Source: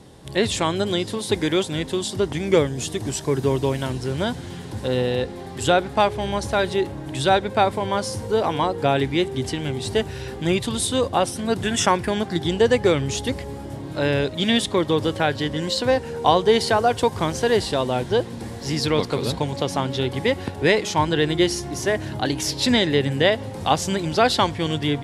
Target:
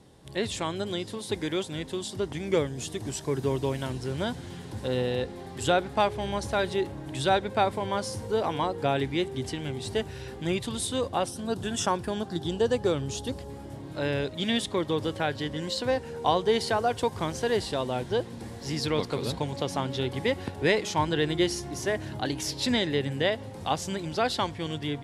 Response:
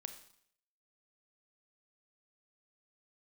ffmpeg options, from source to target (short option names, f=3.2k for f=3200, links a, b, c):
-filter_complex "[0:a]dynaudnorm=f=550:g=11:m=11.5dB,asettb=1/sr,asplit=3[a][b][c];[a]atrim=end=11.284[d];[b]atrim=start=11.28:end=13.5,asetpts=PTS-STARTPTS,afade=t=in:d=0.004:c=qsin,afade=t=out:st=2.216:d=0.004:c=qsin,equalizer=f=2.1k:w=3.1:g=-11[e];[c]atrim=start=13.496[f];[d][e]acrossfade=d=0.004:c1=hsin:c2=qsin[g];[g][f]acrossfade=d=0.004:c1=qsin:c2=hsin,volume=-9dB"